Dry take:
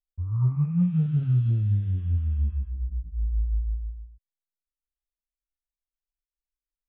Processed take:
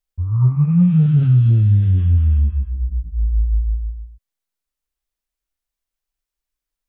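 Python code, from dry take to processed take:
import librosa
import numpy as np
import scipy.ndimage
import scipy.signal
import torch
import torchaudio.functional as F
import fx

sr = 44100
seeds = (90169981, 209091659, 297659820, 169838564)

y = fx.env_flatten(x, sr, amount_pct=50, at=(0.67, 2.39), fade=0.02)
y = F.gain(torch.from_numpy(y), 8.5).numpy()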